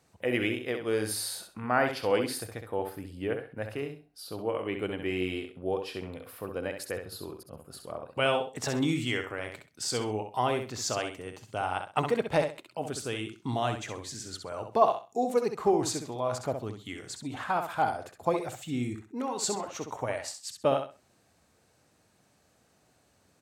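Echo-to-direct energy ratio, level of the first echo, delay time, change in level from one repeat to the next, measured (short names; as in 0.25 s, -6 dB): -7.0 dB, -7.0 dB, 65 ms, -13.0 dB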